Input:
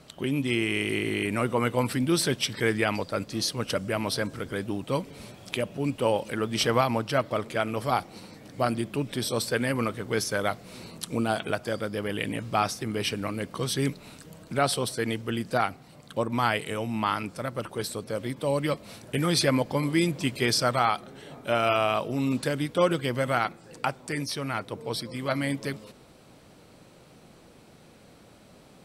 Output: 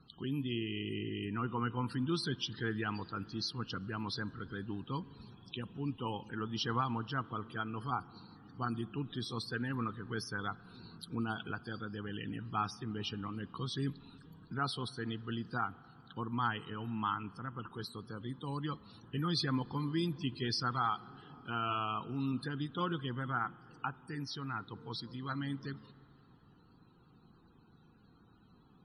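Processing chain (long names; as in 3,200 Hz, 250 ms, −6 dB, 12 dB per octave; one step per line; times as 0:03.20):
spectral peaks only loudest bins 64
phaser with its sweep stopped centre 2,200 Hz, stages 6
spring reverb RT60 3.2 s, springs 38/51 ms, chirp 60 ms, DRR 20 dB
level −6.5 dB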